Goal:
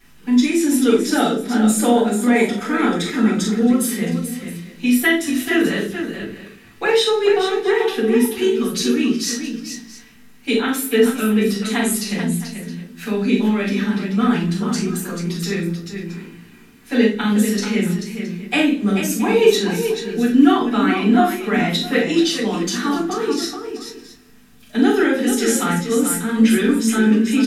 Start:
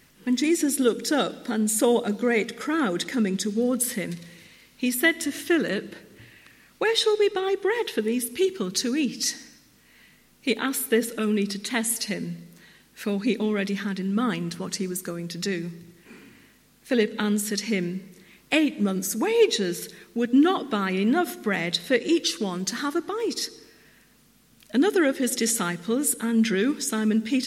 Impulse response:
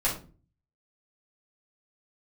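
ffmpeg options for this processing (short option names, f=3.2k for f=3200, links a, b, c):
-filter_complex "[0:a]aecho=1:1:42|57|436|668:0.447|0.316|0.422|0.141[a];[1:a]atrim=start_sample=2205,asetrate=61740,aresample=44100[b];[a][b]afir=irnorm=-1:irlink=0,volume=-2.5dB"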